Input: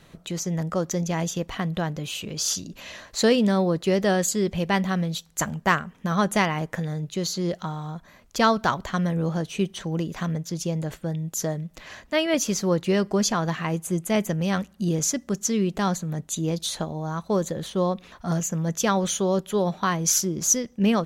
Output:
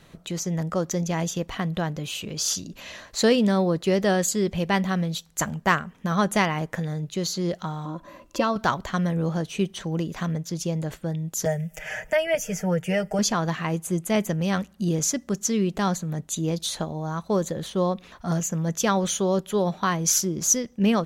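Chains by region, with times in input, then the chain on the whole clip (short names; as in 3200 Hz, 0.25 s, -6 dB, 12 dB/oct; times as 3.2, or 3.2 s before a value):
7.85–8.56 compressor 1.5:1, threshold -40 dBFS + small resonant body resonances 320/550/1000/2700 Hz, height 17 dB, ringing for 55 ms
11.45–13.19 fixed phaser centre 1100 Hz, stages 6 + comb 6.5 ms, depth 72% + three-band squash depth 70%
whole clip: dry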